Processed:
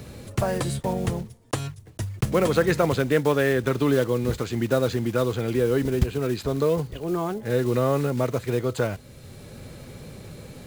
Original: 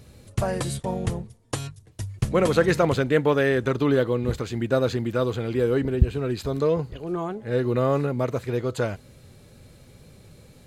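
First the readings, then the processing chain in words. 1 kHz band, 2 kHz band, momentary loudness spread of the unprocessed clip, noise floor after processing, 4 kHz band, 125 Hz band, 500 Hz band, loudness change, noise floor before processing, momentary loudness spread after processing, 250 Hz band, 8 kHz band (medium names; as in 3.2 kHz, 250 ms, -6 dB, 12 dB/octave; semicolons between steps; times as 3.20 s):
0.0 dB, -0.5 dB, 12 LU, -46 dBFS, +1.0 dB, 0.0 dB, 0.0 dB, 0.0 dB, -52 dBFS, 20 LU, +0.5 dB, +2.0 dB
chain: block-companded coder 5-bit; three bands compressed up and down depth 40%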